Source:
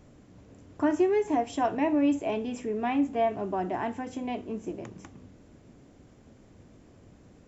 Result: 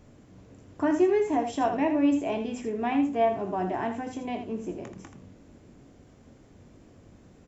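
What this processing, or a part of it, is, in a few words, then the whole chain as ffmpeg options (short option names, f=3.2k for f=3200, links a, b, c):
slapback doubling: -filter_complex "[0:a]asplit=3[a][b][c];[b]adelay=22,volume=-8.5dB[d];[c]adelay=81,volume=-8.5dB[e];[a][d][e]amix=inputs=3:normalize=0"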